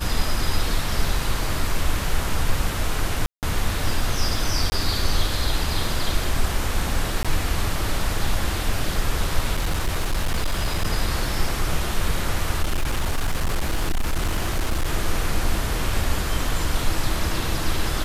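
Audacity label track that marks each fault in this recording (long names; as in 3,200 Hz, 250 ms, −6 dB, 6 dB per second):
3.260000	3.430000	drop-out 168 ms
4.700000	4.720000	drop-out 20 ms
7.230000	7.250000	drop-out 16 ms
9.540000	10.860000	clipping −17.5 dBFS
12.620000	14.930000	clipping −17.5 dBFS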